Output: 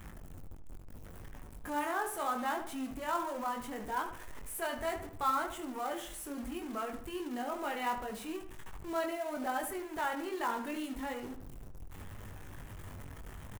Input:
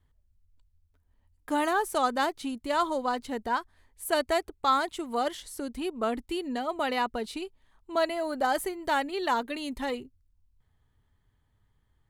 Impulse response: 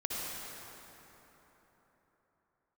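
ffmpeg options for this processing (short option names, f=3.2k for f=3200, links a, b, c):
-filter_complex "[0:a]aeval=exprs='val(0)+0.5*0.0211*sgn(val(0))':c=same,equalizer=f=4.4k:w=1.6:g=-12.5,acrossover=split=810|6400[a][b][c];[a]alimiter=level_in=6dB:limit=-24dB:level=0:latency=1:release=14,volume=-6dB[d];[d][b][c]amix=inputs=3:normalize=0,flanger=delay=19:depth=2.3:speed=0.81,acrusher=bits=4:mode=log:mix=0:aa=0.000001,atempo=0.89,asplit=2[e][f];[f]adelay=75,lowpass=f=3k:p=1,volume=-9dB,asplit=2[g][h];[h]adelay=75,lowpass=f=3k:p=1,volume=0.43,asplit=2[i][j];[j]adelay=75,lowpass=f=3k:p=1,volume=0.43,asplit=2[k][l];[l]adelay=75,lowpass=f=3k:p=1,volume=0.43,asplit=2[m][n];[n]adelay=75,lowpass=f=3k:p=1,volume=0.43[o];[e][g][i][k][m][o]amix=inputs=6:normalize=0,volume=-4dB"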